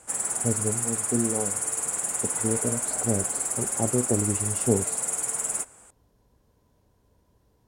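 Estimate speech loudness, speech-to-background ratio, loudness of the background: -30.0 LUFS, -4.0 dB, -26.0 LUFS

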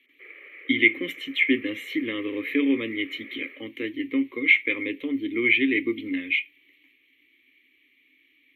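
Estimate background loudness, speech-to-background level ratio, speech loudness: -44.0 LUFS, 19.5 dB, -24.5 LUFS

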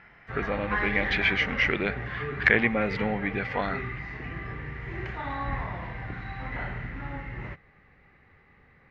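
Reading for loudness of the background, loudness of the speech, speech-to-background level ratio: -34.5 LUFS, -27.0 LUFS, 7.5 dB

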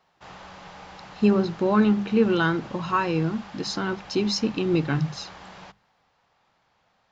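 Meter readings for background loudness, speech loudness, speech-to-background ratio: -44.0 LUFS, -24.0 LUFS, 20.0 dB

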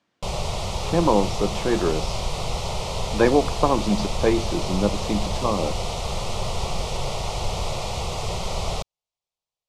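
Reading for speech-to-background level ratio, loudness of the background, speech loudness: 5.0 dB, -28.5 LUFS, -23.5 LUFS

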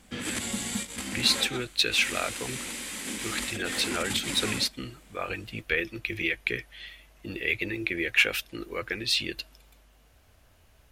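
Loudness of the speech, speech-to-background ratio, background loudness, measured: -28.0 LUFS, 5.0 dB, -33.0 LUFS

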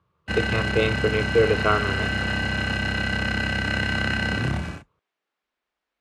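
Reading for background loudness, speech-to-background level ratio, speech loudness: -25.0 LUFS, 0.5 dB, -24.5 LUFS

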